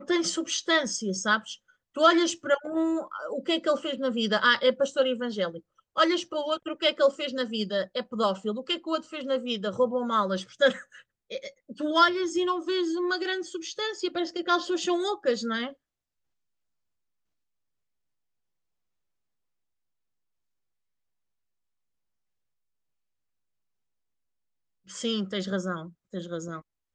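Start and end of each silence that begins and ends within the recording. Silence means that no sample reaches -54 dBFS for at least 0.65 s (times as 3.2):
15.74–24.87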